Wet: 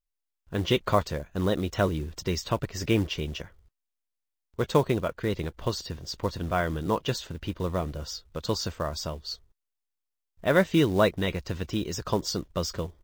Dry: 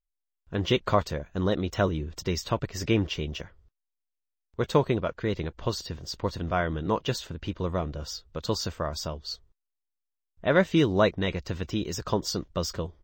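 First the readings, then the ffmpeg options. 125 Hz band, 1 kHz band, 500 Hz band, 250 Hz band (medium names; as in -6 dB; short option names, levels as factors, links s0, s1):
0.0 dB, 0.0 dB, 0.0 dB, 0.0 dB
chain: -af "acrusher=bits=6:mode=log:mix=0:aa=0.000001"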